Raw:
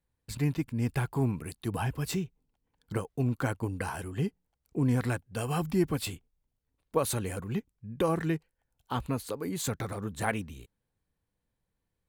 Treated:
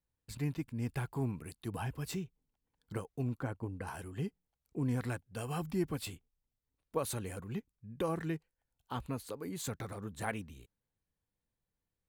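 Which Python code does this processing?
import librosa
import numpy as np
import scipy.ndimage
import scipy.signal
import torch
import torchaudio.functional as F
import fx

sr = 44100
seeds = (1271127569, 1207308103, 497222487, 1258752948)

y = fx.high_shelf(x, sr, hz=2200.0, db=-12.0, at=(3.38, 3.86), fade=0.02)
y = y * librosa.db_to_amplitude(-7.0)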